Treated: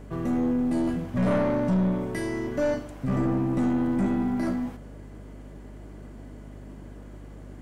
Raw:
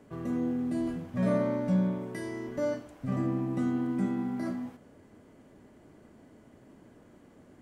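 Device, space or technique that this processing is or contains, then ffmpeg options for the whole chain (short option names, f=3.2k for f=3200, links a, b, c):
valve amplifier with mains hum: -af "aeval=exprs='(tanh(25.1*val(0)+0.25)-tanh(0.25))/25.1':c=same,aeval=exprs='val(0)+0.00282*(sin(2*PI*50*n/s)+sin(2*PI*2*50*n/s)/2+sin(2*PI*3*50*n/s)/3+sin(2*PI*4*50*n/s)/4+sin(2*PI*5*50*n/s)/5)':c=same,volume=8.5dB"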